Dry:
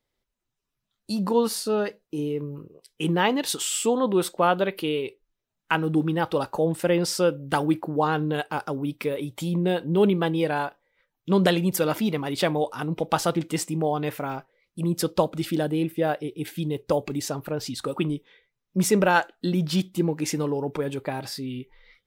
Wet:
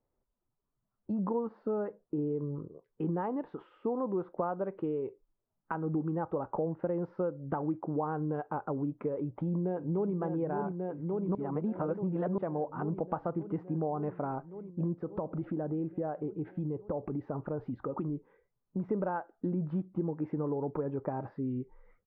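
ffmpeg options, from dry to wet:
ffmpeg -i in.wav -filter_complex "[0:a]asplit=2[link_01][link_02];[link_02]afade=type=in:start_time=9.17:duration=0.01,afade=type=out:start_time=10.14:duration=0.01,aecho=0:1:570|1140|1710|2280|2850|3420|3990|4560|5130|5700|6270|6840:0.398107|0.29858|0.223935|0.167951|0.125964|0.0944727|0.0708545|0.0531409|0.0398557|0.0298918|0.0224188|0.0168141[link_03];[link_01][link_03]amix=inputs=2:normalize=0,asettb=1/sr,asplit=3[link_04][link_05][link_06];[link_04]atrim=end=14.944[link_07];[link_05]atrim=start=14.94:end=18.89,asetpts=PTS-STARTPTS,afade=type=in:duration=0.004:curve=qsin,afade=type=out:start_time=3.946:duration=0.004:curve=qsin,acompressor=threshold=-31dB:ratio=2.5:attack=3.2:release=140:knee=1:detection=peak[link_08];[link_06]atrim=start=18.886[link_09];[link_07][link_08]acrossfade=duration=0.004:curve1=hsin:curve2=qsin[link_10];[link_10][link_09]acrossfade=duration=0.004:curve1=qsin:curve2=hsin,asplit=3[link_11][link_12][link_13];[link_11]atrim=end=11.352[link_14];[link_12]atrim=start=11.348:end=12.382,asetpts=PTS-STARTPTS,areverse[link_15];[link_13]atrim=start=12.378[link_16];[link_14][link_15]acrossfade=duration=0.004:curve1=hsin:curve2=hsin[link_17];[link_17][link_16]acrossfade=duration=0.004:curve1=hsin:curve2=hsin,acompressor=threshold=-30dB:ratio=5,lowpass=frequency=1200:width=0.5412,lowpass=frequency=1200:width=1.3066" out.wav

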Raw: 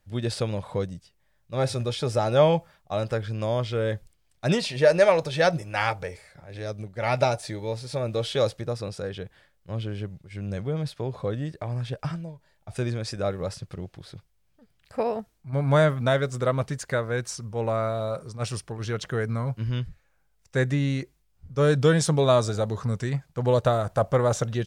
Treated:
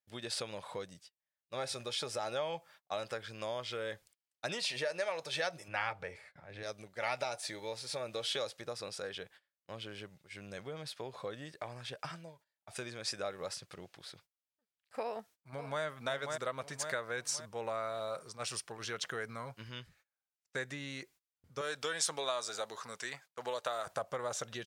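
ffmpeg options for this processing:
ffmpeg -i in.wav -filter_complex "[0:a]asettb=1/sr,asplit=3[link_01][link_02][link_03];[link_01]atrim=end=5.684[link_04];[link_02]atrim=start=5.68:end=6.63,asetpts=PTS-STARTPTS,afade=type=in:duration=0.004:curve=qsin,afade=type=out:start_time=0.946:duration=0.004:curve=qsin,bass=frequency=250:gain=9,treble=frequency=4000:gain=-13[link_05];[link_03]atrim=start=6.626[link_06];[link_04][link_05]acrossfade=duration=0.004:curve1=hsin:curve2=qsin[link_07];[link_07][link_06]acrossfade=duration=0.004:curve1=qsin:curve2=hsin,asplit=2[link_08][link_09];[link_09]afade=type=in:start_time=15.04:duration=0.01,afade=type=out:start_time=15.83:duration=0.01,aecho=0:1:540|1080|1620|2160:0.375837|0.150335|0.060134|0.0240536[link_10];[link_08][link_10]amix=inputs=2:normalize=0,asettb=1/sr,asplit=3[link_11][link_12][link_13];[link_11]atrim=end=21.614[link_14];[link_12]atrim=start=21.61:end=23.87,asetpts=PTS-STARTPTS,afade=type=in:duration=0.004:curve=qsin,afade=type=out:start_time=2.256:duration=0.004:curve=qsin,highpass=frequency=660:poles=1[link_15];[link_13]atrim=start=23.866[link_16];[link_14][link_15]acrossfade=duration=0.004:curve1=hsin:curve2=qsin[link_17];[link_17][link_16]acrossfade=duration=0.004:curve1=qsin:curve2=hsin,agate=range=-21dB:threshold=-48dB:ratio=16:detection=peak,acompressor=threshold=-27dB:ratio=5,highpass=frequency=1200:poles=1" out.wav

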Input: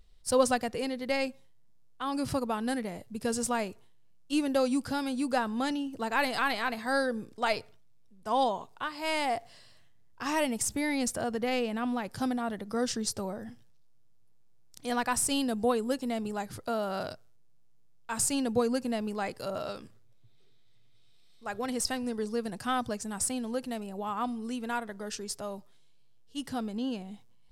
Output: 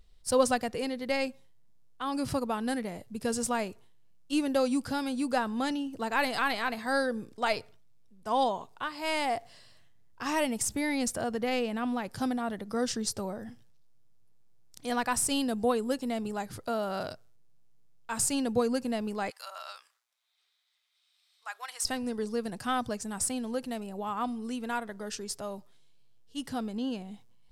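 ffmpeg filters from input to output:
ffmpeg -i in.wav -filter_complex "[0:a]asplit=3[link_01][link_02][link_03];[link_01]afade=type=out:start_time=19.29:duration=0.02[link_04];[link_02]highpass=frequency=930:width=0.5412,highpass=frequency=930:width=1.3066,afade=type=in:start_time=19.29:duration=0.02,afade=type=out:start_time=21.83:duration=0.02[link_05];[link_03]afade=type=in:start_time=21.83:duration=0.02[link_06];[link_04][link_05][link_06]amix=inputs=3:normalize=0" out.wav

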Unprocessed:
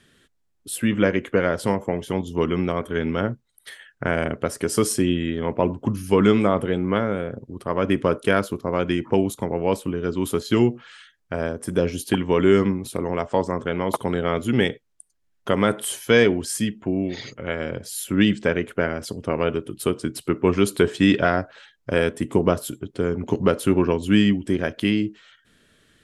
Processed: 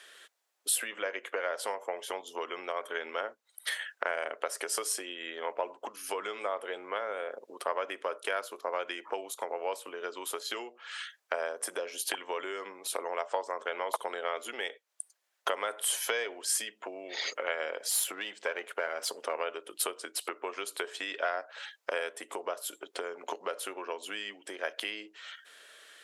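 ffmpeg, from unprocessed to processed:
ffmpeg -i in.wav -filter_complex "[0:a]asplit=3[link_01][link_02][link_03];[link_01]afade=type=out:start_time=17.89:duration=0.02[link_04];[link_02]aeval=exprs='if(lt(val(0),0),0.708*val(0),val(0))':channel_layout=same,afade=type=in:start_time=17.89:duration=0.02,afade=type=out:start_time=19.33:duration=0.02[link_05];[link_03]afade=type=in:start_time=19.33:duration=0.02[link_06];[link_04][link_05][link_06]amix=inputs=3:normalize=0,acompressor=threshold=-32dB:ratio=8,highpass=frequency=540:width=0.5412,highpass=frequency=540:width=1.3066,volume=7dB" out.wav

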